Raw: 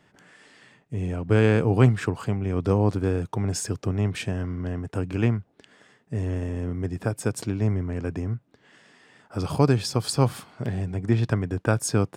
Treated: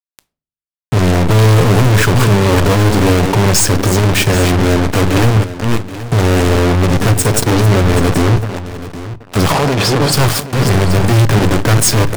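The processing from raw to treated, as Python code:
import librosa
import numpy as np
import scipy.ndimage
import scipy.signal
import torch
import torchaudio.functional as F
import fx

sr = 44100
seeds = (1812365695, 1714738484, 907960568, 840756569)

y = fx.reverse_delay(x, sr, ms=289, wet_db=-13.0)
y = fx.fuzz(y, sr, gain_db=34.0, gate_db=-36.0)
y = fx.bandpass_q(y, sr, hz=fx.line((9.5, 1300.0), (10.12, 370.0)), q=0.53, at=(9.5, 10.12), fade=0.02)
y = fx.leveller(y, sr, passes=5)
y = y + 10.0 ** (-14.0 / 20.0) * np.pad(y, (int(778 * sr / 1000.0), 0))[:len(y)]
y = fx.room_shoebox(y, sr, seeds[0], volume_m3=240.0, walls='furnished', distance_m=0.31)
y = F.gain(torch.from_numpy(y), 1.0).numpy()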